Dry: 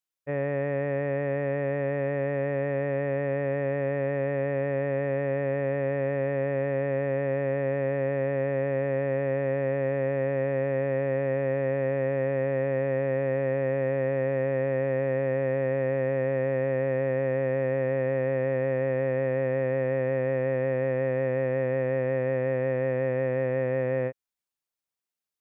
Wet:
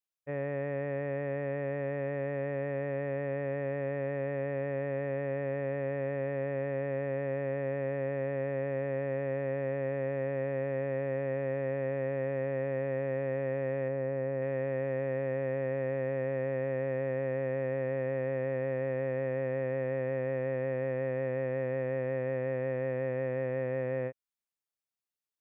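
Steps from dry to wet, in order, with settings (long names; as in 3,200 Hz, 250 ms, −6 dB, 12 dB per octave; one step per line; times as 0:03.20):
0:13.88–0:14.42: high-shelf EQ 2,300 Hz −10 dB
level −6 dB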